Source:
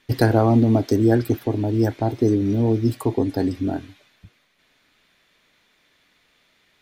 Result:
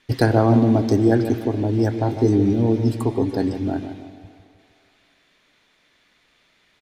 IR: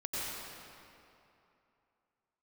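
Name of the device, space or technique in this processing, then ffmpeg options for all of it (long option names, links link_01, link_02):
filtered reverb send: -filter_complex "[0:a]lowpass=11000,asettb=1/sr,asplit=3[link_01][link_02][link_03];[link_01]atrim=end=2.004[link_04];[link_02]atrim=start=2:end=2.53,asetpts=PTS-STARTPTS,afade=type=in:duration=0.004:curve=qsin,afade=type=out:start_time=0.526:duration=0.004:curve=qsin,asplit=2[link_05][link_06];[link_06]adelay=20,volume=-6dB[link_07];[link_05][link_07]amix=inputs=2:normalize=0,atrim=end_sample=23373[link_08];[link_03]atrim=start=2.526[link_09];[link_04][link_08]acrossfade=duration=0.004:curve1=hsin:curve2=qsin[link_10];[link_10][link_09]acrossfade=duration=0.004:curve1=qsin:curve2=hsin,asplit=2[link_11][link_12];[link_12]adelay=153,lowpass=frequency=1100:poles=1,volume=-9dB,asplit=2[link_13][link_14];[link_14]adelay=153,lowpass=frequency=1100:poles=1,volume=0.49,asplit=2[link_15][link_16];[link_16]adelay=153,lowpass=frequency=1100:poles=1,volume=0.49,asplit=2[link_17][link_18];[link_18]adelay=153,lowpass=frequency=1100:poles=1,volume=0.49,asplit=2[link_19][link_20];[link_20]adelay=153,lowpass=frequency=1100:poles=1,volume=0.49,asplit=2[link_21][link_22];[link_22]adelay=153,lowpass=frequency=1100:poles=1,volume=0.49[link_23];[link_11][link_13][link_15][link_17][link_19][link_21][link_23]amix=inputs=7:normalize=0,asplit=2[link_24][link_25];[link_25]highpass=480,lowpass=8900[link_26];[1:a]atrim=start_sample=2205[link_27];[link_26][link_27]afir=irnorm=-1:irlink=0,volume=-18dB[link_28];[link_24][link_28]amix=inputs=2:normalize=0"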